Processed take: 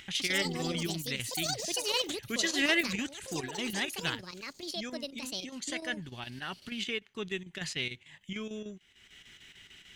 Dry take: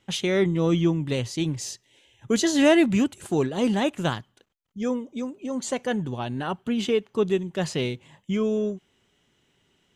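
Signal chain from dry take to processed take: graphic EQ 125/250/500/1000/2000/4000 Hz -7/-6/-11/-8/+8/+3 dB; upward compressor, threshold -33 dBFS; chopper 6.7 Hz, depth 60%, duty 80%; echoes that change speed 0.144 s, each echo +7 st, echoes 2; gain -5 dB

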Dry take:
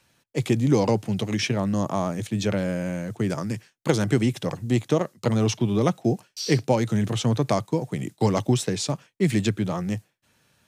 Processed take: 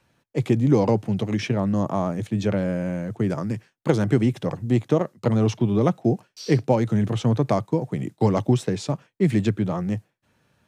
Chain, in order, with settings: high shelf 2500 Hz -11.5 dB; gain +2 dB

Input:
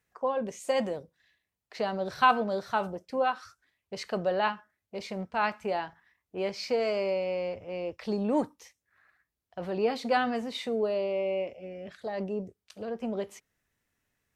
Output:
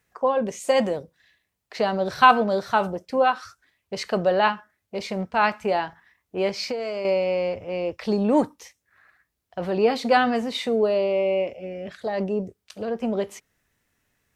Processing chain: 6.63–7.05 compressor 6:1, threshold -34 dBFS, peak gain reduction 10.5 dB; gain +7.5 dB

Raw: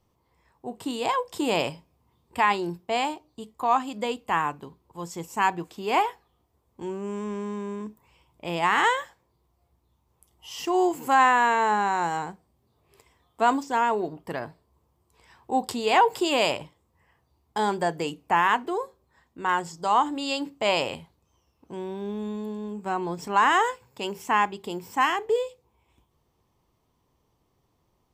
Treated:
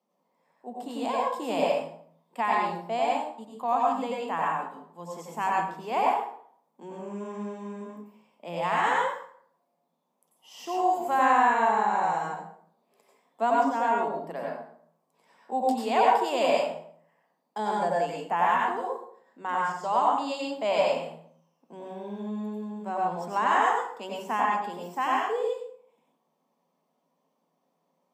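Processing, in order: rippled Chebyshev high-pass 160 Hz, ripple 9 dB; plate-style reverb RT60 0.59 s, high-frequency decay 0.7×, pre-delay 80 ms, DRR -3.5 dB; gain -2 dB

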